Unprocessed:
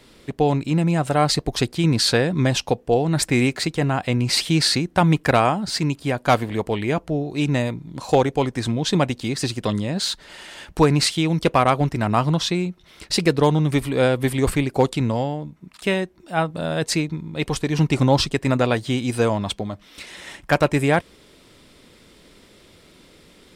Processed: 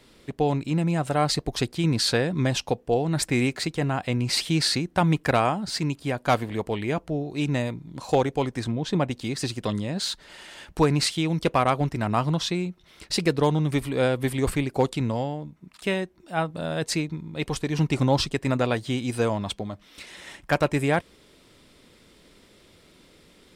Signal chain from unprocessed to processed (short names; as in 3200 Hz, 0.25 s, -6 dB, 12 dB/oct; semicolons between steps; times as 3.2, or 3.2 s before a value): 8.64–9.11 high shelf 2700 Hz -9 dB; gain -4.5 dB